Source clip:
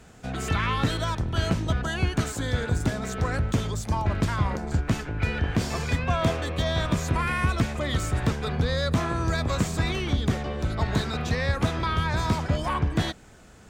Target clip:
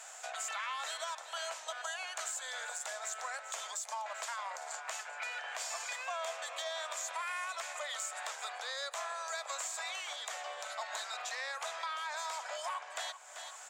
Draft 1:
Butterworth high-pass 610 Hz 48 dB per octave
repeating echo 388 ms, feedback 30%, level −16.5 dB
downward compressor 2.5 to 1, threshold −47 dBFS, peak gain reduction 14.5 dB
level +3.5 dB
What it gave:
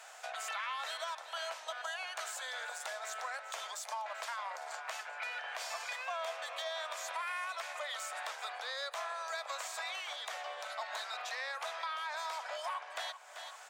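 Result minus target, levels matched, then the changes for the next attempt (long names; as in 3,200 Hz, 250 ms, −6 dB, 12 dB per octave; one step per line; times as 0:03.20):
8,000 Hz band −5.5 dB
add after Butterworth high-pass: parametric band 7,300 Hz +11 dB 0.48 octaves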